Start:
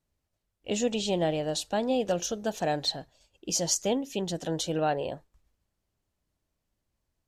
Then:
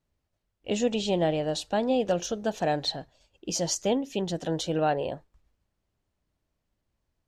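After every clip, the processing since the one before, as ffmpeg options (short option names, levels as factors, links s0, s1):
-af "highshelf=f=7200:g=-11.5,volume=1.26"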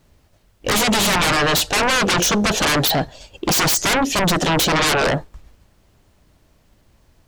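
-af "aeval=exprs='0.2*sin(PI/2*8.91*val(0)/0.2)':c=same"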